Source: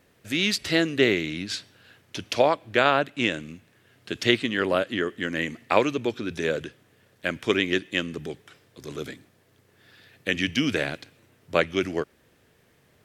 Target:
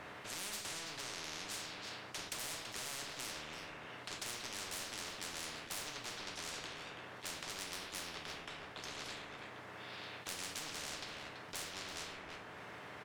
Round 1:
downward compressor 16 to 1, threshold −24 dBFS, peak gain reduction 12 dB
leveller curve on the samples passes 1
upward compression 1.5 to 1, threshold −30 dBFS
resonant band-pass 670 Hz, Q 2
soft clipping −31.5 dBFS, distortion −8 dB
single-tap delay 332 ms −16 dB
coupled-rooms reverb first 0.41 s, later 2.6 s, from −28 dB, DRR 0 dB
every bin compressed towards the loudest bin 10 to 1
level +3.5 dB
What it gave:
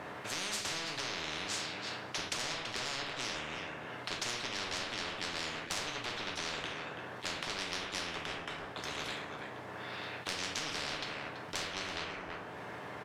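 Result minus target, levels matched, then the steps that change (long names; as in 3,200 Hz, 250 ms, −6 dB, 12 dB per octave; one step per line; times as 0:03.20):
soft clipping: distortion −5 dB
change: soft clipping −40 dBFS, distortion −3 dB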